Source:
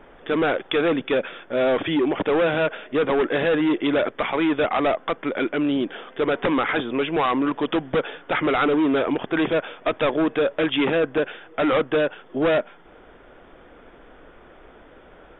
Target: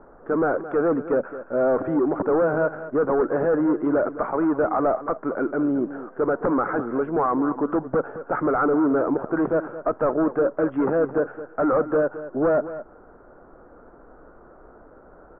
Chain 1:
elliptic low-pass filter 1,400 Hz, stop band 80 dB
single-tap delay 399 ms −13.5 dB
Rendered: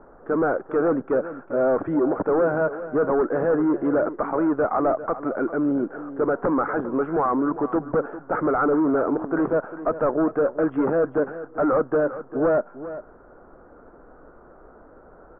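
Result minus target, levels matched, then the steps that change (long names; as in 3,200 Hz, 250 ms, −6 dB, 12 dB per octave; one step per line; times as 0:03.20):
echo 182 ms late
change: single-tap delay 217 ms −13.5 dB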